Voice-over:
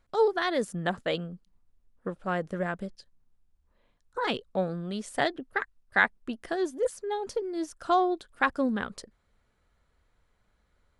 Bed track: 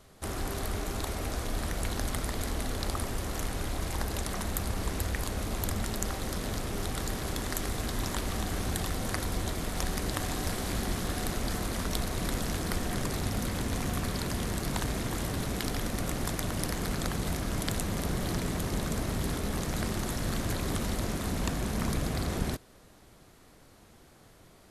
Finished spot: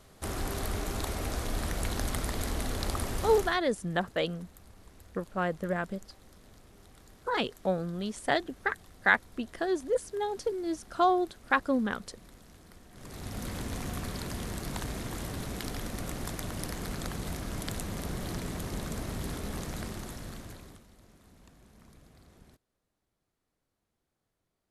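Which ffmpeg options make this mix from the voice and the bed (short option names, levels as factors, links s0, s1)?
-filter_complex "[0:a]adelay=3100,volume=0.944[s0];[1:a]volume=7.94,afade=t=out:st=3.32:d=0.28:silence=0.0749894,afade=t=in:st=12.93:d=0.57:silence=0.125893,afade=t=out:st=19.59:d=1.25:silence=0.0794328[s1];[s0][s1]amix=inputs=2:normalize=0"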